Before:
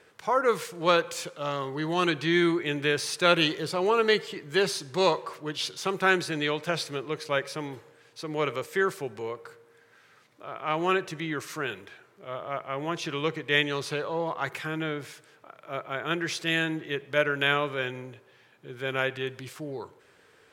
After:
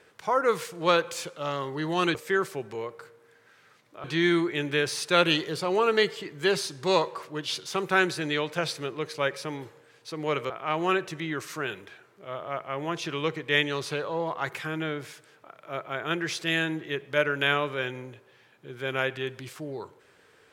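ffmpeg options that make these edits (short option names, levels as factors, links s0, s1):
-filter_complex "[0:a]asplit=4[s0][s1][s2][s3];[s0]atrim=end=2.152[s4];[s1]atrim=start=8.608:end=10.502[s5];[s2]atrim=start=2.148:end=8.612[s6];[s3]atrim=start=10.498[s7];[s4][s5]acrossfade=d=0.004:c1=hsin:c2=hsin[s8];[s8][s6]acrossfade=d=0.004:c1=hsin:c2=hsin[s9];[s9][s7]acrossfade=d=0.004:c1=hsin:c2=hsin"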